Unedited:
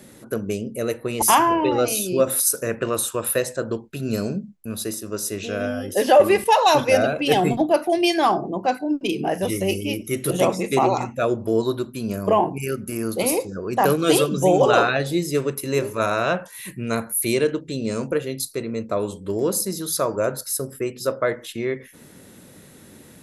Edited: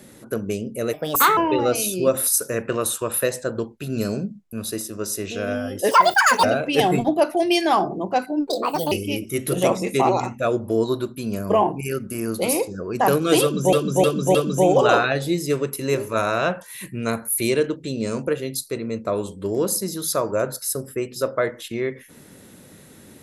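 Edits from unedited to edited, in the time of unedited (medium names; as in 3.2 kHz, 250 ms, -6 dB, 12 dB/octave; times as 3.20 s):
0.93–1.50 s: speed 129%
6.04–6.96 s: speed 176%
8.99–9.69 s: speed 155%
14.19–14.50 s: loop, 4 plays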